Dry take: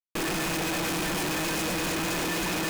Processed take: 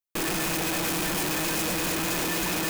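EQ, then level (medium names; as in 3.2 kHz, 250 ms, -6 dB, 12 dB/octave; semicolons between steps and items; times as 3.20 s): treble shelf 9.4 kHz +8.5 dB; 0.0 dB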